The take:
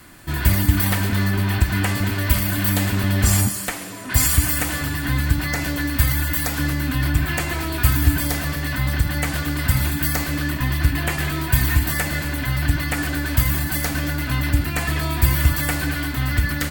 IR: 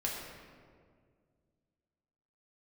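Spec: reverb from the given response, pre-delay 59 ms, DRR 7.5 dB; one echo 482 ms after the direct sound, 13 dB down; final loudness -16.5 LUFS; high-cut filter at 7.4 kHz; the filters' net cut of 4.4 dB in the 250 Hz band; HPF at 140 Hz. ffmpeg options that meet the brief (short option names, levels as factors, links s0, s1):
-filter_complex "[0:a]highpass=140,lowpass=7400,equalizer=f=250:t=o:g=-5,aecho=1:1:482:0.224,asplit=2[s0][s1];[1:a]atrim=start_sample=2205,adelay=59[s2];[s1][s2]afir=irnorm=-1:irlink=0,volume=0.266[s3];[s0][s3]amix=inputs=2:normalize=0,volume=2.66"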